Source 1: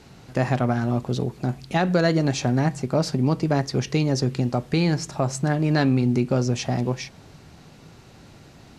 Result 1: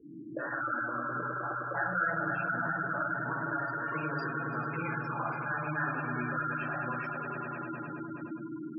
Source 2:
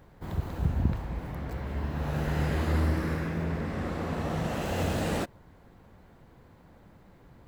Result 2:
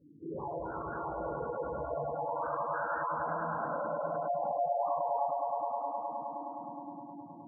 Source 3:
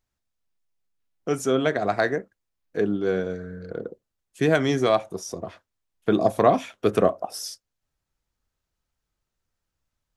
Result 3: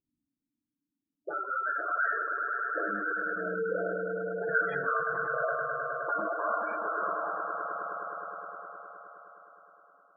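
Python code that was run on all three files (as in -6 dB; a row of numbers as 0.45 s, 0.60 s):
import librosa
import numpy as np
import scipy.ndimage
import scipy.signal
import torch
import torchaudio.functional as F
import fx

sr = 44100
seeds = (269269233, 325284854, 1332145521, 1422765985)

p1 = fx.auto_wah(x, sr, base_hz=270.0, top_hz=1400.0, q=11.0, full_db=-22.5, direction='up')
p2 = fx.over_compress(p1, sr, threshold_db=-53.0, ratio=-1.0)
p3 = p1 + (p2 * librosa.db_to_amplitude(0.0))
p4 = fx.echo_swell(p3, sr, ms=104, loudest=5, wet_db=-8.5)
p5 = fx.room_shoebox(p4, sr, seeds[0], volume_m3=900.0, walls='furnished', distance_m=5.2)
y = fx.spec_gate(p5, sr, threshold_db=-15, keep='strong')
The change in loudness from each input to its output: -10.5 LU, -4.0 LU, -7.5 LU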